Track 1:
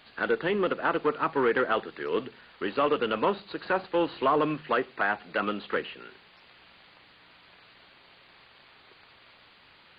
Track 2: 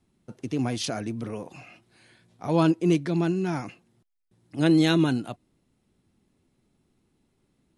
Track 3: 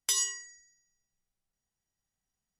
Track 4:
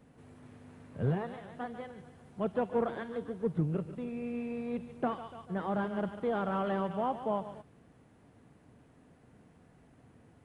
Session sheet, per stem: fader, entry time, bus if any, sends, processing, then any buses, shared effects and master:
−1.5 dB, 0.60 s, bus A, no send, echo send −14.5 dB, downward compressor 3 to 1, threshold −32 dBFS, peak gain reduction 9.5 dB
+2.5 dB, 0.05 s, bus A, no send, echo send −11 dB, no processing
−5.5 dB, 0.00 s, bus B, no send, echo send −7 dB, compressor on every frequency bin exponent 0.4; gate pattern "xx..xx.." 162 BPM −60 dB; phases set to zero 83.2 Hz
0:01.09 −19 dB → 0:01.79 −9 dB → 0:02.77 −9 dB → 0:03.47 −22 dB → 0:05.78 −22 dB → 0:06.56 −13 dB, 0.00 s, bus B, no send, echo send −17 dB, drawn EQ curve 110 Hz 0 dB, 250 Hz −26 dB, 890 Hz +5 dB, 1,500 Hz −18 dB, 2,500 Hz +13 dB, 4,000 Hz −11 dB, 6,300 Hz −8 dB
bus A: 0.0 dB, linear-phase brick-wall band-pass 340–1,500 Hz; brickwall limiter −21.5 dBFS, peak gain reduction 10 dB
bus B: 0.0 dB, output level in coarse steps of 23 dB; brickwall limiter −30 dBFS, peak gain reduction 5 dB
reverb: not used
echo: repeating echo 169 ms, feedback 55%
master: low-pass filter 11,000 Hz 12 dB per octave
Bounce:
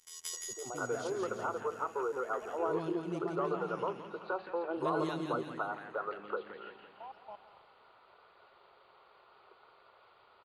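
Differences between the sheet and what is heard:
stem 2 +2.5 dB → −9.0 dB
master: missing low-pass filter 11,000 Hz 12 dB per octave

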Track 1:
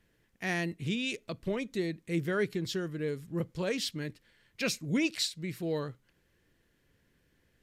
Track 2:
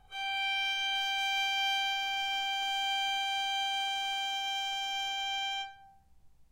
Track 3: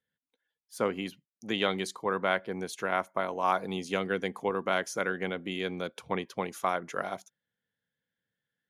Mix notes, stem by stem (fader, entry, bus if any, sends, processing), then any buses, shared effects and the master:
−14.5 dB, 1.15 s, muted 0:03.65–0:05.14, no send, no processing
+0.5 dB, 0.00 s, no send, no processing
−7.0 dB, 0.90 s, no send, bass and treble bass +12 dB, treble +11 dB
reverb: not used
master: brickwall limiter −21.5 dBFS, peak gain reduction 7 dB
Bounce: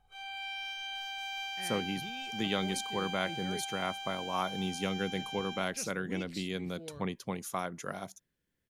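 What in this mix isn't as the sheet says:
stem 2 +0.5 dB → −8.0 dB
master: missing brickwall limiter −21.5 dBFS, peak gain reduction 7 dB

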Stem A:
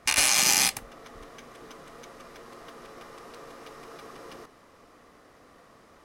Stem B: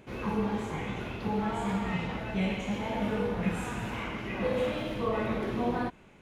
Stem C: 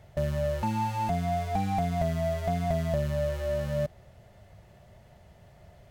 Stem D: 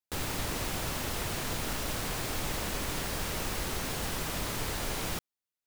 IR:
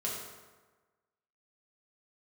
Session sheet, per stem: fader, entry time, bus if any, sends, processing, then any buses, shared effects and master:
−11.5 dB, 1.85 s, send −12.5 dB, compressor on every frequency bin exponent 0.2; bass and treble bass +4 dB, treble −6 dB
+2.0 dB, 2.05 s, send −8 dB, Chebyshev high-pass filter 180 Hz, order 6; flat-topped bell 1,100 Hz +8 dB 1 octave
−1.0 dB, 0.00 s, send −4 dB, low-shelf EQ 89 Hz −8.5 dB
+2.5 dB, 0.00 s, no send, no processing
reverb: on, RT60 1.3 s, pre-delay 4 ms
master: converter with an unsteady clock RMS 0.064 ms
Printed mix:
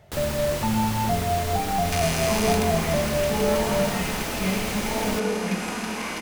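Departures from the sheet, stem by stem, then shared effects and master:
stem B: missing flat-topped bell 1,100 Hz +8 dB 1 octave
master: missing converter with an unsteady clock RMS 0.064 ms

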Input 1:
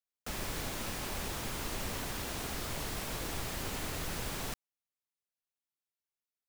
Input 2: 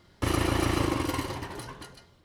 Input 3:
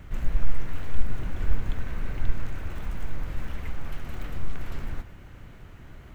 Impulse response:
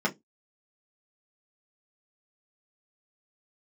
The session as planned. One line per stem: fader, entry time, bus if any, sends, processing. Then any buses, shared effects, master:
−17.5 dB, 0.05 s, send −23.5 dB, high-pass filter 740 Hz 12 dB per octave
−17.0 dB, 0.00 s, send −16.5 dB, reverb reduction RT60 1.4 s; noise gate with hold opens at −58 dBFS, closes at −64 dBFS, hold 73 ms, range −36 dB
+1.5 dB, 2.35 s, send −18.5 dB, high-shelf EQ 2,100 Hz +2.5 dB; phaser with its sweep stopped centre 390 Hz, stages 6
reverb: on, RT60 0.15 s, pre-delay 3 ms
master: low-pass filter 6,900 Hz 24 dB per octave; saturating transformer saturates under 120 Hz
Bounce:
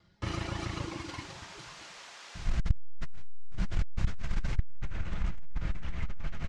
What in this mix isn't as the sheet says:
stem 1 −17.5 dB → −5.5 dB
stem 2 −17.0 dB → −6.5 dB
stem 3: missing phaser with its sweep stopped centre 390 Hz, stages 6

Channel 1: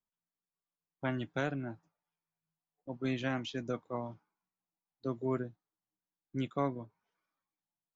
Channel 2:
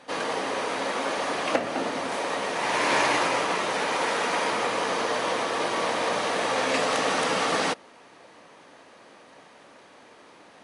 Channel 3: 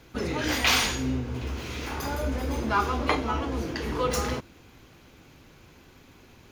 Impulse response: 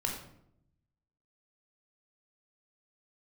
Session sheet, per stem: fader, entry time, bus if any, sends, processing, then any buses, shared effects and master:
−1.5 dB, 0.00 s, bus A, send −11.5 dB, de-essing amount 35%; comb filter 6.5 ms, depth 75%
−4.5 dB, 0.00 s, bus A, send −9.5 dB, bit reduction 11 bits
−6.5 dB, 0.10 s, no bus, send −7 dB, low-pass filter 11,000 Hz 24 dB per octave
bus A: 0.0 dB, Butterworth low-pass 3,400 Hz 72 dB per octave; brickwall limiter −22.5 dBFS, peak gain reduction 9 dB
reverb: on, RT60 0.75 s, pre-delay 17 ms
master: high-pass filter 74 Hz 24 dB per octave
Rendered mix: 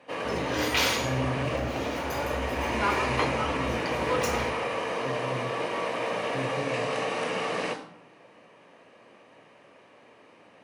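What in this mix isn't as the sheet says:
stem 2: missing bit reduction 11 bits
stem 3: missing low-pass filter 11,000 Hz 24 dB per octave

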